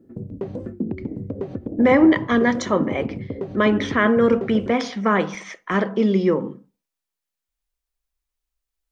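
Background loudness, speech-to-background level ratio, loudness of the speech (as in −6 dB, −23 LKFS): −31.0 LKFS, 11.5 dB, −19.5 LKFS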